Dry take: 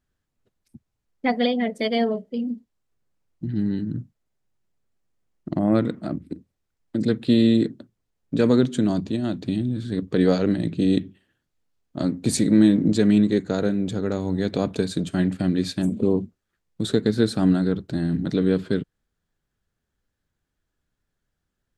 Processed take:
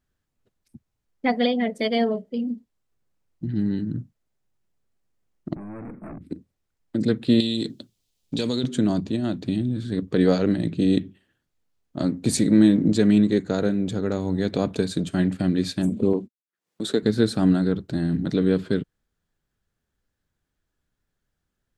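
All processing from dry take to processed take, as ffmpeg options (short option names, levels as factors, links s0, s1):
-filter_complex "[0:a]asettb=1/sr,asplit=3[s0][s1][s2];[s0]atrim=end=5.554[s3];[s1]atrim=start=5.55:end=6.21,asetpts=PTS-STARTPTS,afade=t=in:d=0.004:c=qsin,afade=t=out:st=0.656:d=0.004:c=qsin,acompressor=threshold=0.0794:ratio=10:attack=3.2:release=140:knee=1:detection=peak,aeval=exprs='(tanh(50.1*val(0)+0.3)-tanh(0.3))/50.1':c=same,asuperstop=centerf=4800:order=20:qfactor=0.8[s4];[s2]atrim=start=6.206[s5];[s3][s4]acrossfade=d=0.004:c1=hsin:c2=qsin[s6];[s6][s5]acrossfade=d=0.004:c1=qsin:c2=hsin,asettb=1/sr,asplit=3[s7][s8][s9];[s7]atrim=end=7.404[s10];[s8]atrim=start=7.4:end=8.64,asetpts=PTS-STARTPTS,afade=t=in:d=0.004:c=qsin,afade=t=out:st=1.236:d=0.004:c=qsin,highshelf=f=2400:t=q:w=1.5:g=12,acompressor=threshold=0.0891:ratio=5:attack=3.2:release=140:knee=1:detection=peak[s11];[s9]atrim=start=8.636[s12];[s10][s11]acrossfade=d=0.004:c1=hsin:c2=qsin[s13];[s13][s12]acrossfade=d=0.004:c1=qsin:c2=hsin,asettb=1/sr,asplit=3[s14][s15][s16];[s14]atrim=end=16.134[s17];[s15]atrim=start=16.13:end=17.03,asetpts=PTS-STARTPTS,afade=t=in:d=0.004:c=qsin,afade=t=out:st=0.896:d=0.004:c=qsin,agate=range=0.002:threshold=0.0126:ratio=16:release=100:detection=peak,highpass=250,acompressor=mode=upward:threshold=0.0178:ratio=2.5:attack=3.2:release=140:knee=2.83:detection=peak[s18];[s16]atrim=start=17.026[s19];[s17][s18]acrossfade=d=0.004:c1=hsin:c2=qsin[s20];[s20][s19]acrossfade=d=0.004:c1=qsin:c2=hsin"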